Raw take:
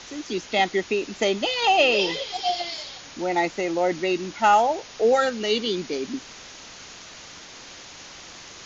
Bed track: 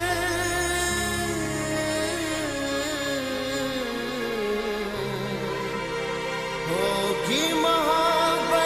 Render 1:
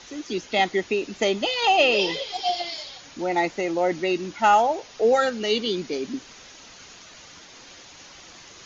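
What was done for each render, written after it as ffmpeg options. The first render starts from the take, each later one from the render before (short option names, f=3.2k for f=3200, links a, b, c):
-af "afftdn=nr=6:nf=-43"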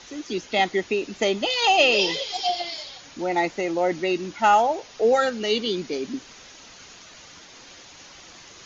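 -filter_complex "[0:a]asettb=1/sr,asplit=3[a][b][c];[a]atrim=end=1.504[d];[b]atrim=start=1.5:end=2.47,asetpts=PTS-STARTPTS,afade=t=in:d=0.004:c=qsin,afade=t=out:st=0.966:d=0.004:c=qsin,aemphasis=mode=production:type=cd[e];[c]atrim=start=2.466[f];[d][e]acrossfade=d=0.004:c1=hsin:c2=qsin[g];[g][f]acrossfade=d=0.004:c1=qsin:c2=hsin"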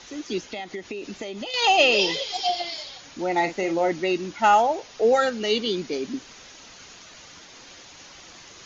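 -filter_complex "[0:a]asettb=1/sr,asplit=3[a][b][c];[a]atrim=end=0.454[d];[b]atrim=start=0.45:end=1.54,asetpts=PTS-STARTPTS,afade=t=in:d=0.004:c=qsin,afade=t=out:st=1.086:d=0.004:c=qsin,acompressor=threshold=-29dB:ratio=10:attack=3.2:release=140:knee=1:detection=peak[e];[c]atrim=start=1.536[f];[d][e]acrossfade=d=0.004:c1=hsin:c2=qsin[g];[g][f]acrossfade=d=0.004:c1=qsin:c2=hsin,asettb=1/sr,asplit=3[h][i][j];[h]atrim=end=3.364[k];[i]atrim=start=3.36:end=3.89,asetpts=PTS-STARTPTS,afade=t=in:d=0.004:c=qsin,afade=t=out:st=0.526:d=0.004:c=qsin,asplit=2[l][m];[m]adelay=42,volume=-9.5dB[n];[l][n]amix=inputs=2:normalize=0,atrim=end_sample=23373[o];[j]atrim=start=3.886[p];[k][o]acrossfade=d=0.004:c1=hsin:c2=qsin[q];[q][p]acrossfade=d=0.004:c1=qsin:c2=hsin"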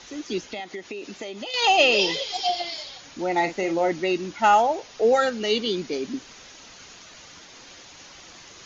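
-filter_complex "[0:a]asettb=1/sr,asplit=3[a][b][c];[a]atrim=end=0.604[d];[b]atrim=start=0.6:end=1.55,asetpts=PTS-STARTPTS,afade=t=in:d=0.004:c=qsin,afade=t=out:st=0.946:d=0.004:c=qsin,lowshelf=f=140:g=-11[e];[c]atrim=start=1.546[f];[d][e]acrossfade=d=0.004:c1=hsin:c2=qsin[g];[g][f]acrossfade=d=0.004:c1=qsin:c2=hsin"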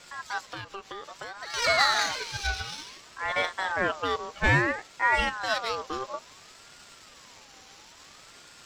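-af "aeval=exprs='if(lt(val(0),0),0.447*val(0),val(0))':c=same,aeval=exprs='val(0)*sin(2*PI*1100*n/s+1100*0.3/0.59*sin(2*PI*0.59*n/s))':c=same"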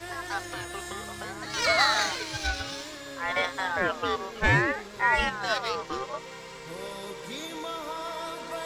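-filter_complex "[1:a]volume=-14dB[a];[0:a][a]amix=inputs=2:normalize=0"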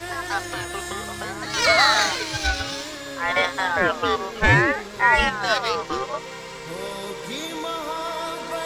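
-af "volume=6.5dB,alimiter=limit=-3dB:level=0:latency=1"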